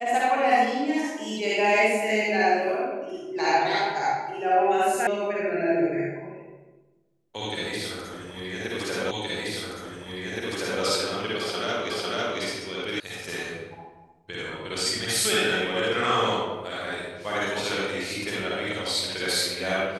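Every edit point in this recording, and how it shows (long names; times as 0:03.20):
0:05.07: cut off before it has died away
0:09.11: the same again, the last 1.72 s
0:11.90: the same again, the last 0.5 s
0:13.00: cut off before it has died away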